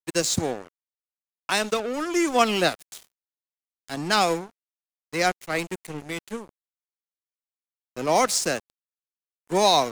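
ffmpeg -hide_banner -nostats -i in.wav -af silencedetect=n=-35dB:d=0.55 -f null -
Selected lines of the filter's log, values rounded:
silence_start: 0.67
silence_end: 1.49 | silence_duration: 0.82
silence_start: 3.03
silence_end: 3.88 | silence_duration: 0.86
silence_start: 4.47
silence_end: 5.13 | silence_duration: 0.67
silence_start: 6.44
silence_end: 7.97 | silence_duration: 1.52
silence_start: 8.59
silence_end: 9.50 | silence_duration: 0.91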